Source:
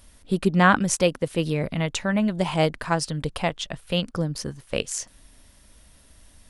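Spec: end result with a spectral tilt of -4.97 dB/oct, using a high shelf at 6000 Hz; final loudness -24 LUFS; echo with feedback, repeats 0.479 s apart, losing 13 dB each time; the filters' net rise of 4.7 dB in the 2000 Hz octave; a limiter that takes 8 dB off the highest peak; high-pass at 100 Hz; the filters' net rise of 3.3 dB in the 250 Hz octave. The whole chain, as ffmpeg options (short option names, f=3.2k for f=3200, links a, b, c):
-af "highpass=100,equalizer=f=250:t=o:g=5.5,equalizer=f=2k:t=o:g=7,highshelf=f=6k:g=-7.5,alimiter=limit=-9.5dB:level=0:latency=1,aecho=1:1:479|958|1437:0.224|0.0493|0.0108,volume=-0.5dB"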